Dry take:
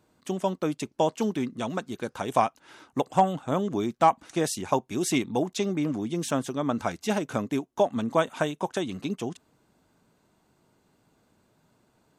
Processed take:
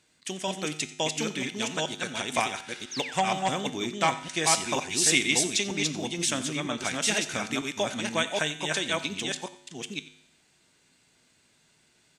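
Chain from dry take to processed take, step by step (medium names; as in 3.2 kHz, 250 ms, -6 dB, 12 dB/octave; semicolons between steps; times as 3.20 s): chunks repeated in reverse 476 ms, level -2 dB; painted sound fall, 2.91–3.20 s, 800–6900 Hz -45 dBFS; high-order bell 4.1 kHz +15.5 dB 2.9 oct; feedback comb 51 Hz, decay 0.8 s, harmonics odd, mix 60%; delay 90 ms -18.5 dB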